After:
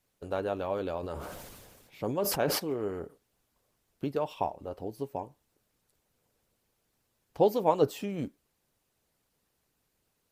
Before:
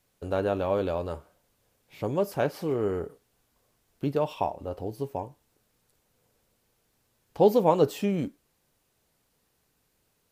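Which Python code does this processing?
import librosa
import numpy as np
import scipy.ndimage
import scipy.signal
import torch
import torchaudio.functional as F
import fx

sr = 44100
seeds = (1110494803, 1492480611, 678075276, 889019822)

y = fx.hpss(x, sr, part='harmonic', gain_db=-7)
y = fx.sustainer(y, sr, db_per_s=33.0, at=(1.02, 2.58), fade=0.02)
y = y * librosa.db_to_amplitude(-2.0)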